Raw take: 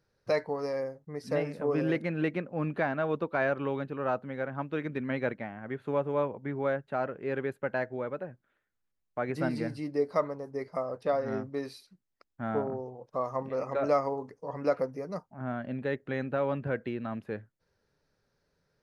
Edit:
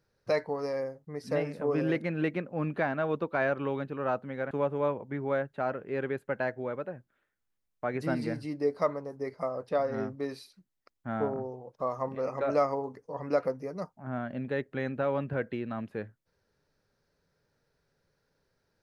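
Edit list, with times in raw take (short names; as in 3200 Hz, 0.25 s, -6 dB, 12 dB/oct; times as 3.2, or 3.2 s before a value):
4.51–5.85 cut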